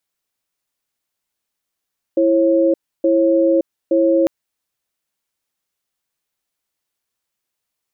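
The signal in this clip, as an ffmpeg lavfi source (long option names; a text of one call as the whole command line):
ffmpeg -f lavfi -i "aevalsrc='0.2*(sin(2*PI*332*t)+sin(2*PI*542*t))*clip(min(mod(t,0.87),0.57-mod(t,0.87))/0.005,0,1)':duration=2.1:sample_rate=44100" out.wav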